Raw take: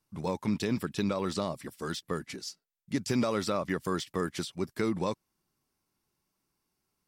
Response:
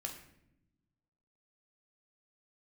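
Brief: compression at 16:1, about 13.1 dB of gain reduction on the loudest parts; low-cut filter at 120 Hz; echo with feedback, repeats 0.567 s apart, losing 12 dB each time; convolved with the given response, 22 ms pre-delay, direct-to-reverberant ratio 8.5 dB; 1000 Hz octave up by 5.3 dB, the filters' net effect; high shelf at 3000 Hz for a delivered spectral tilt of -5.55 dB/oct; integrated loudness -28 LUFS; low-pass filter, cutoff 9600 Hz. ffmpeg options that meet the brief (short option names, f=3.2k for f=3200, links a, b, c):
-filter_complex "[0:a]highpass=120,lowpass=9.6k,equalizer=f=1k:t=o:g=7.5,highshelf=f=3k:g=-8,acompressor=threshold=-37dB:ratio=16,aecho=1:1:567|1134|1701:0.251|0.0628|0.0157,asplit=2[a][b];[1:a]atrim=start_sample=2205,adelay=22[c];[b][c]afir=irnorm=-1:irlink=0,volume=-7dB[d];[a][d]amix=inputs=2:normalize=0,volume=15dB"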